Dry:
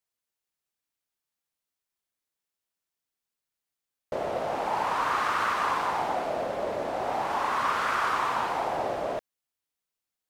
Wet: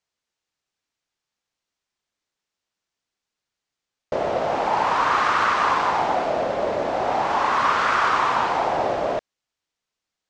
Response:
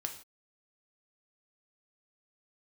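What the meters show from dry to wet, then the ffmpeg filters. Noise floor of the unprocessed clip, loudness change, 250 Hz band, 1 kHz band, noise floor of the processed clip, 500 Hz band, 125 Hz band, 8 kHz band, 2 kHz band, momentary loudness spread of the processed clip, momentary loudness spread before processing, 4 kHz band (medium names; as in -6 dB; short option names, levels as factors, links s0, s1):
under -85 dBFS, +7.0 dB, +7.0 dB, +7.0 dB, under -85 dBFS, +7.0 dB, +7.0 dB, +4.0 dB, +7.0 dB, 6 LU, 6 LU, +7.0 dB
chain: -af "lowpass=f=7000:w=0.5412,lowpass=f=7000:w=1.3066,volume=2.24"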